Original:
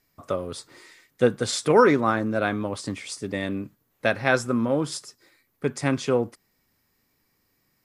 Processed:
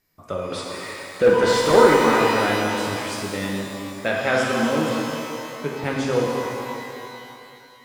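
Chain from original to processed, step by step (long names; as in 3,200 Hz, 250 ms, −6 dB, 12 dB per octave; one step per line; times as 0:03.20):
0:00.52–0:01.76: mid-hump overdrive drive 25 dB, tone 1,100 Hz, clips at −6.5 dBFS
0:04.89–0:05.84: elliptic band-pass filter 120–3,900 Hz
reverb with rising layers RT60 2.7 s, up +12 semitones, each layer −8 dB, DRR −3 dB
level −2.5 dB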